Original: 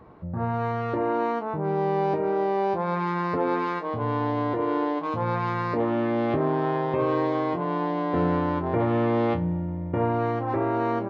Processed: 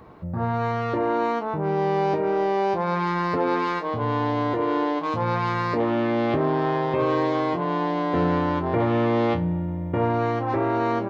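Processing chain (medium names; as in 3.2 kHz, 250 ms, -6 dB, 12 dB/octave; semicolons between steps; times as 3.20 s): treble shelf 3.2 kHz +10.5 dB; in parallel at -10 dB: saturation -24 dBFS, distortion -11 dB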